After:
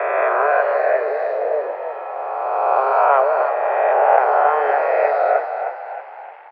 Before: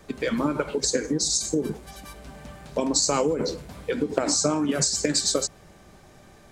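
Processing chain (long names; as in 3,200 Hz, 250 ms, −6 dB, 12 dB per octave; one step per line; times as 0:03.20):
peak hold with a rise ahead of every peak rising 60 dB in 2.65 s
parametric band 810 Hz +12 dB 2.2 octaves
bit-depth reduction 6 bits, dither none
on a send: echo with shifted repeats 310 ms, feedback 48%, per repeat +38 Hz, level −8 dB
on the sum: single-sideband voice off tune +140 Hz 310–2,300 Hz
level −3.5 dB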